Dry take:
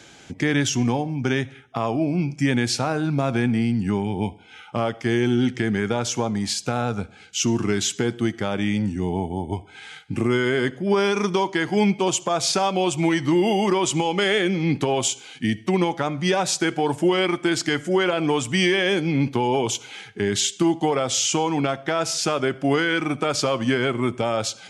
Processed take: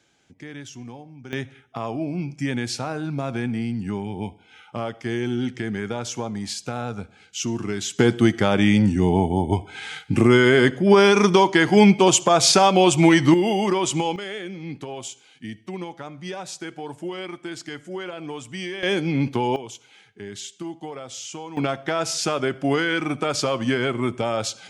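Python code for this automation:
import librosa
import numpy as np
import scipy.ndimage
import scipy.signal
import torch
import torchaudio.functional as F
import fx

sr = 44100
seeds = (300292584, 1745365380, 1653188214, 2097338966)

y = fx.gain(x, sr, db=fx.steps((0.0, -17.0), (1.33, -5.0), (7.99, 6.0), (13.34, -1.0), (14.16, -12.0), (18.83, -1.0), (19.56, -13.5), (21.57, -1.0)))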